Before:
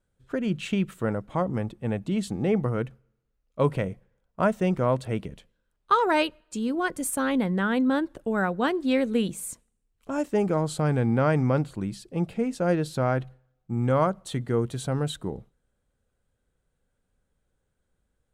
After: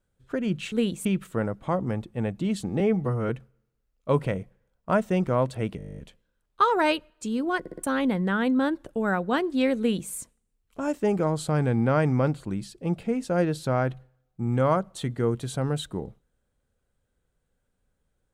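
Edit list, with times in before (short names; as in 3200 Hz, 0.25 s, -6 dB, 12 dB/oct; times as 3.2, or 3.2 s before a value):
2.47–2.8 stretch 1.5×
5.28 stutter 0.02 s, 11 plays
6.9 stutter in place 0.06 s, 4 plays
9.09–9.42 copy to 0.72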